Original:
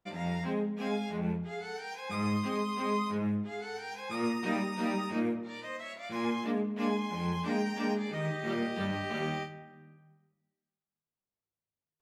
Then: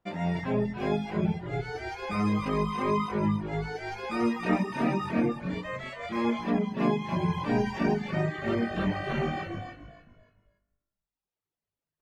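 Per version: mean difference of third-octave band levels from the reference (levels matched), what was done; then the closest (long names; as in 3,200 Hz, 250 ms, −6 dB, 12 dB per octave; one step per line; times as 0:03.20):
5.5 dB: on a send: echo with shifted repeats 286 ms, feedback 31%, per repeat −50 Hz, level −5 dB
on the sum: reverb reduction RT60 1.2 s
high-shelf EQ 3,800 Hz −10.5 dB
level +6 dB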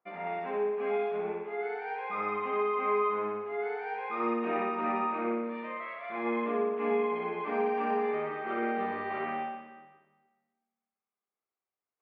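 9.0 dB: loudspeaker in its box 300–2,500 Hz, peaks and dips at 430 Hz +6 dB, 760 Hz +6 dB, 1,200 Hz +9 dB, 2,100 Hz +6 dB
notch filter 1,900 Hz, Q 14
on a send: flutter between parallel walls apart 10.3 metres, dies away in 1.2 s
on the sum: level −4 dB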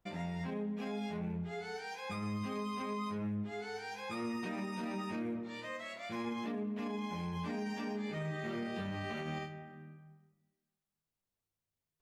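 2.5 dB: in parallel at +2 dB: downward compressor, threshold −47 dBFS, peak gain reduction 19 dB
on the sum: low-shelf EQ 90 Hz +11 dB
brickwall limiter −25 dBFS, peak gain reduction 8 dB
level −6 dB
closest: third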